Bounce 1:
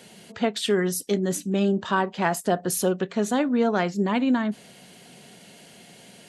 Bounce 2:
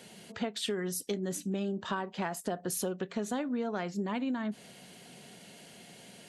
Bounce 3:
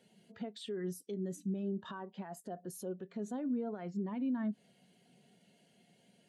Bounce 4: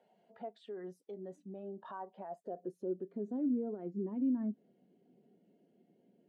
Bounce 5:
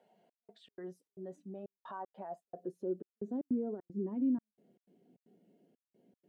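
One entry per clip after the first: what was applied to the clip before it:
compression, threshold -27 dBFS, peak gain reduction 10 dB; trim -3.5 dB
peak limiter -29 dBFS, peak gain reduction 8.5 dB; spectral contrast expander 1.5:1; trim +1 dB
band-pass sweep 750 Hz -> 330 Hz, 2.05–2.88 s; trim +6.5 dB
trance gate "xxx..xx.xxx.xx" 154 bpm -60 dB; trim +1 dB

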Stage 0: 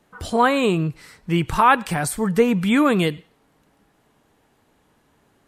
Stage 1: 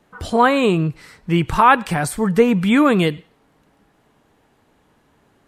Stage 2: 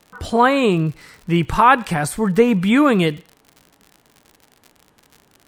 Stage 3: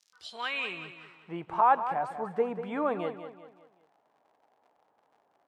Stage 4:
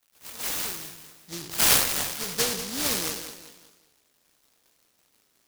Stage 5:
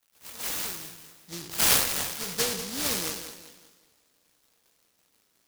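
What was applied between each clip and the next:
treble shelf 5.5 kHz -5.5 dB; trim +3 dB
crackle 74 per s -32 dBFS
band-pass sweep 5.7 kHz -> 740 Hz, 0.06–1.33 s; on a send: feedback delay 191 ms, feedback 40%, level -10.5 dB; on the sum: trim -5.5 dB
spectral sustain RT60 0.83 s; delay time shaken by noise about 4.8 kHz, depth 0.47 ms
reverberation, pre-delay 3 ms, DRR 15 dB; trim -2 dB

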